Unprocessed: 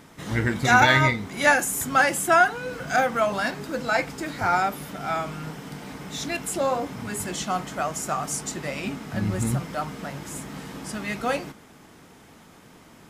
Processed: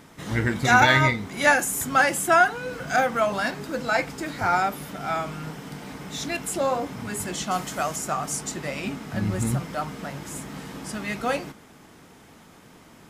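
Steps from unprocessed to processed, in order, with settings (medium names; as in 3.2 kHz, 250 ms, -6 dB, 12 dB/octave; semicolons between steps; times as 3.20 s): 7.51–7.96 s: treble shelf 4.3 kHz +9.5 dB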